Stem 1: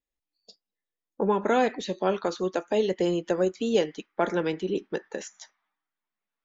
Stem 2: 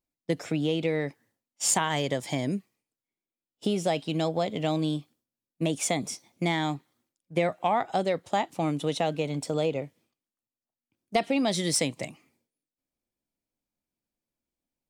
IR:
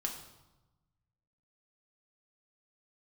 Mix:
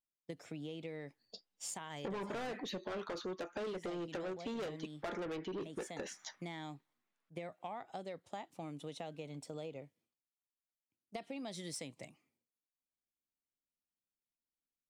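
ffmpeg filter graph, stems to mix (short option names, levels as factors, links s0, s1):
-filter_complex "[0:a]lowpass=5200,asoftclip=type=tanh:threshold=0.0335,adelay=850,volume=1.26[s0];[1:a]volume=0.168[s1];[s0][s1]amix=inputs=2:normalize=0,acompressor=threshold=0.01:ratio=6"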